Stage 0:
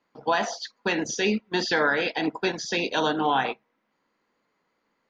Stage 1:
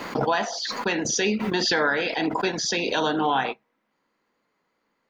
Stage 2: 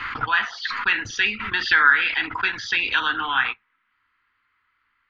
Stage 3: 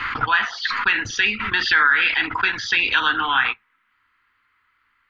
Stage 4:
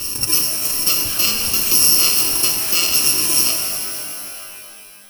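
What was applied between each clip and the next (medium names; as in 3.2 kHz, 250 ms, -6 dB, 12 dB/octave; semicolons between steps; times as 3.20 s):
swell ahead of each attack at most 29 dB/s
FFT filter 110 Hz 0 dB, 150 Hz -25 dB, 280 Hz -19 dB, 620 Hz -30 dB, 1.3 kHz +2 dB, 3.1 kHz -2 dB, 7 kHz -26 dB; trim +8.5 dB
loudness maximiser +10 dB; trim -6 dB
bit-reversed sample order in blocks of 64 samples; pitch-shifted reverb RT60 2.8 s, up +12 st, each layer -2 dB, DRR 2.5 dB; trim +1.5 dB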